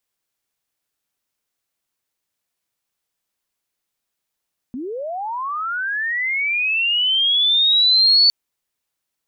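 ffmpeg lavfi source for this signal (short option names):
-f lavfi -i "aevalsrc='pow(10,(-25.5+16*t/3.56)/20)*sin(2*PI*(230*t+4270*t*t/(2*3.56)))':d=3.56:s=44100"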